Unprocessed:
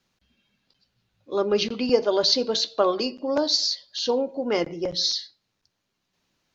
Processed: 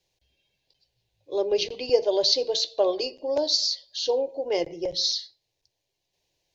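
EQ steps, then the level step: fixed phaser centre 540 Hz, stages 4; 0.0 dB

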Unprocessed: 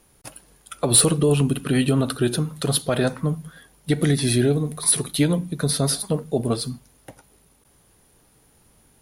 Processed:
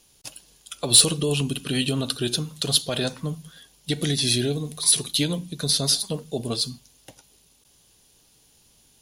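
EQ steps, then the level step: band shelf 4400 Hz +11 dB; high shelf 8200 Hz +8 dB; notch 1300 Hz, Q 15; -6.0 dB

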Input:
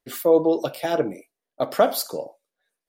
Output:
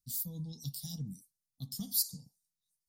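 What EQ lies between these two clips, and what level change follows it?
inverse Chebyshev band-stop 330–2600 Hz, stop band 40 dB; dynamic EQ 6600 Hz, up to -3 dB, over -43 dBFS, Q 0.73; 0.0 dB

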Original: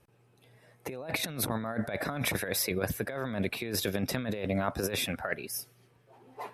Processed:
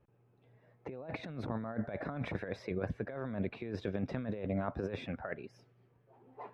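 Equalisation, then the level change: tape spacing loss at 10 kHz 41 dB; -3.0 dB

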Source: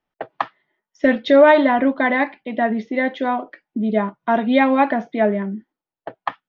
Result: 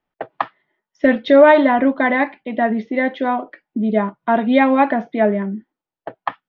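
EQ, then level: air absorption 120 m; +2.0 dB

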